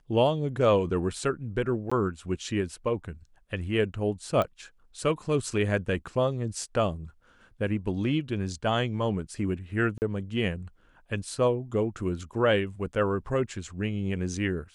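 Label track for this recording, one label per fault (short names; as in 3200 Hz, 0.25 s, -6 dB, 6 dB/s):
1.900000	1.920000	gap 15 ms
4.420000	4.420000	pop -16 dBFS
9.980000	10.020000	gap 39 ms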